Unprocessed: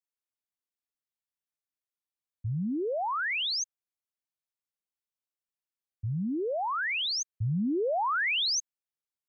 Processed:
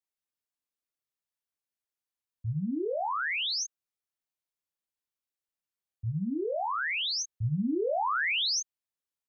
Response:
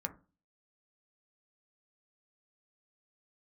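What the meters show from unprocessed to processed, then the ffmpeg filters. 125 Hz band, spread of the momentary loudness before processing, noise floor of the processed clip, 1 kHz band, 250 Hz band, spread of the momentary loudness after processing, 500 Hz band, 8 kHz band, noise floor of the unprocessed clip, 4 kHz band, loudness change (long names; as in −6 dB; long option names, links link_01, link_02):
−0.5 dB, 9 LU, below −85 dBFS, −0.5 dB, −0.5 dB, 9 LU, −0.5 dB, can't be measured, below −85 dBFS, −0.5 dB, −0.5 dB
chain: -filter_complex "[0:a]asplit=2[link_01][link_02];[link_02]adelay=26,volume=-4.5dB[link_03];[link_01][link_03]amix=inputs=2:normalize=0,volume=-2dB"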